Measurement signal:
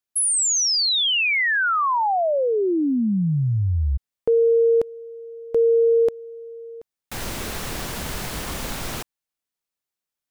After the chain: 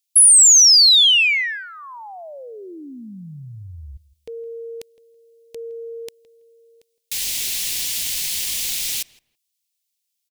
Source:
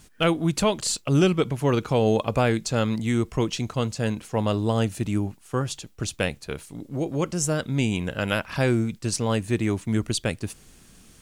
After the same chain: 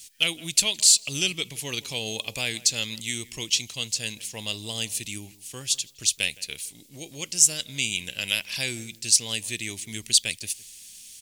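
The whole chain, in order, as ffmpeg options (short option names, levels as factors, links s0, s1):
-filter_complex "[0:a]asplit=2[s0][s1];[s1]adelay=164,lowpass=f=1800:p=1,volume=0.112,asplit=2[s2][s3];[s3]adelay=164,lowpass=f=1800:p=1,volume=0.2[s4];[s0][s2][s4]amix=inputs=3:normalize=0,aexciter=amount=14.8:drive=5.2:freq=2100,volume=0.168"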